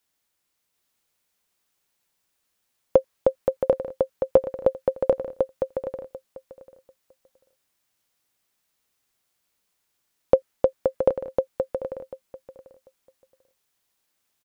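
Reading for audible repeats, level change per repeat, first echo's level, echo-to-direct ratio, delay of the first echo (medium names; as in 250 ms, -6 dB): 2, -16.5 dB, -3.0 dB, -3.0 dB, 742 ms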